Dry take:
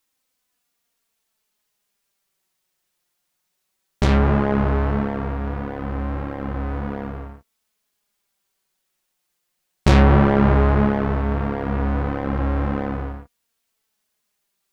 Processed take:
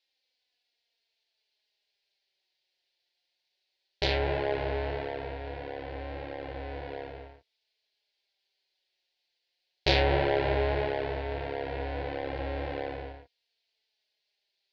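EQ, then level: Chebyshev low-pass 4500 Hz, order 4; tilt +3 dB/oct; fixed phaser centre 500 Hz, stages 4; -1.0 dB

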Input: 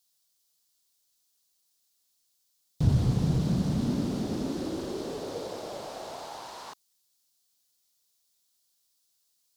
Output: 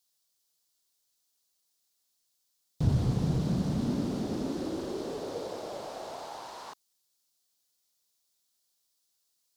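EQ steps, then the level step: tone controls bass -3 dB, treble +4 dB; high shelf 3300 Hz -8 dB; 0.0 dB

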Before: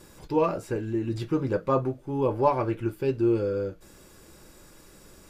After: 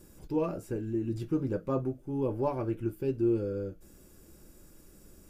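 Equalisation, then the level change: graphic EQ 125/500/1000/2000/4000/8000 Hz -4/-5/-10/-8/-10/-4 dB; 0.0 dB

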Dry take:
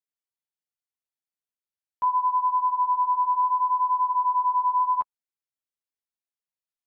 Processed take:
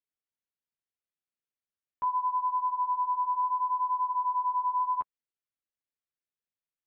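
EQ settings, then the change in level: air absorption 250 m; bell 860 Hz -6 dB 0.79 oct; 0.0 dB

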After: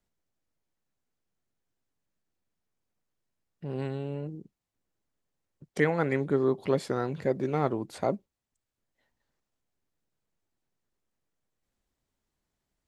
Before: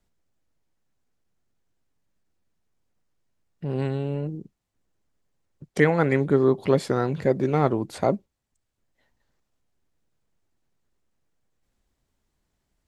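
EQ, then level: low shelf 120 Hz -5 dB; -5.5 dB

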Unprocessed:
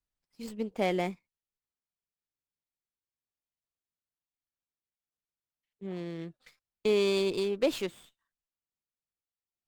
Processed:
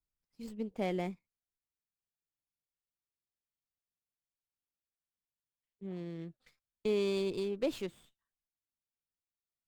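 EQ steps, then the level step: low shelf 320 Hz +8 dB; -8.5 dB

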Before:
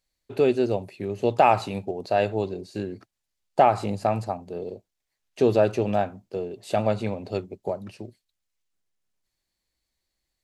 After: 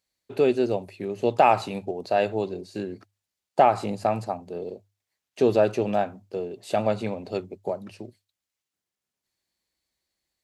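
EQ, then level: HPF 67 Hz; bell 100 Hz -3 dB 1.4 oct; notches 50/100 Hz; 0.0 dB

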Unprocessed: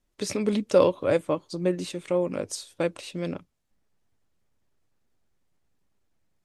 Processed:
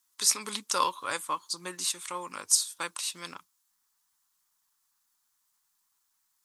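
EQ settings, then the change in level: tilt +4.5 dB/oct; resonant low shelf 780 Hz -8.5 dB, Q 3; bell 2400 Hz -7.5 dB 1.1 oct; 0.0 dB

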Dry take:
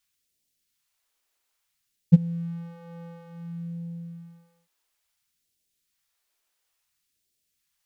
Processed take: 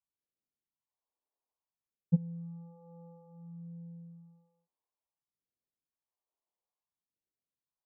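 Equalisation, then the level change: steep low-pass 1100 Hz 72 dB/oct; low shelf 84 Hz -11.5 dB; -8.5 dB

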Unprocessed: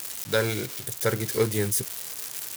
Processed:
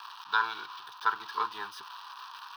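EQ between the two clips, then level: resonant high-pass 1000 Hz, resonance Q 6.6; air absorption 180 m; fixed phaser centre 2100 Hz, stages 6; 0.0 dB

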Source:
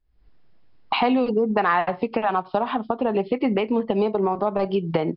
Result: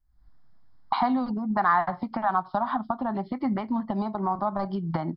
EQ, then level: fixed phaser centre 1100 Hz, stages 4; 0.0 dB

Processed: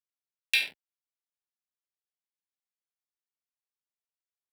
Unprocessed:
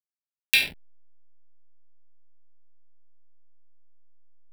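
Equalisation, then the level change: weighting filter A; -6.0 dB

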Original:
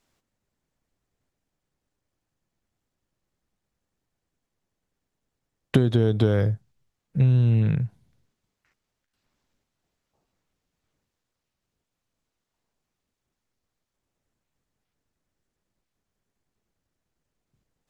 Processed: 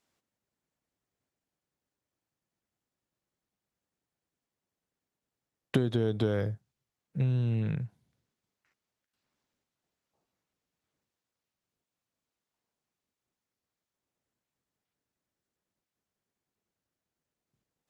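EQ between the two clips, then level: HPF 150 Hz 6 dB/oct; -5.5 dB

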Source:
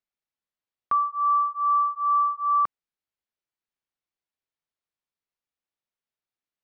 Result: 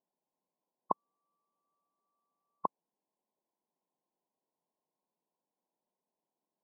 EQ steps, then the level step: brick-wall FIR band-pass 150–1100 Hz; +10.5 dB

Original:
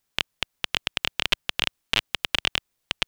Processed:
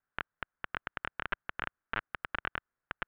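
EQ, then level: ladder low-pass 1700 Hz, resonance 60%; +1.0 dB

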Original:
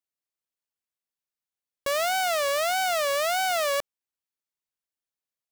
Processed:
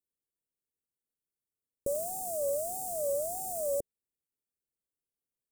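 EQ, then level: elliptic band-stop 470–8200 Hz, stop band 70 dB; Butterworth band-stop 3000 Hz, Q 4.1; high shelf 3600 Hz -5.5 dB; +4.0 dB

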